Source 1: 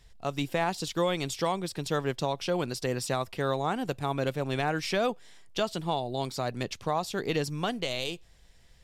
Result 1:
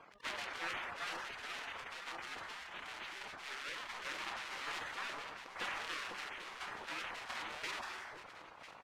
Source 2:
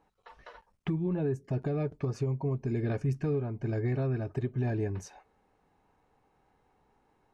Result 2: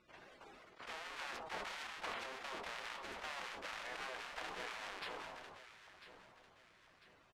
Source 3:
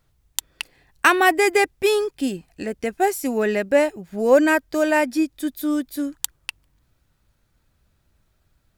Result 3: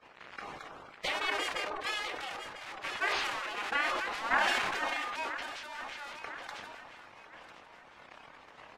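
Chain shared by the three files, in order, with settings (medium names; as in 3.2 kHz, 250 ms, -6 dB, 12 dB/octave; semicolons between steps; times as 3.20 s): zero-crossing glitches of -15 dBFS; band-stop 390 Hz, Q 12; doubling 31 ms -9 dB; transient shaper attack +10 dB, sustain -8 dB; dynamic bell 870 Hz, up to +7 dB, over -33 dBFS, Q 1.3; saturation -1 dBFS; spectral gate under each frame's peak -20 dB weak; low-pass 2.1 kHz 12 dB/octave; bass shelf 330 Hz -11.5 dB; de-hum 202.7 Hz, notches 6; on a send: echo whose repeats swap between lows and highs 499 ms, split 1.1 kHz, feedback 66%, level -9.5 dB; on the sum: decay stretcher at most 23 dB/s; trim -3 dB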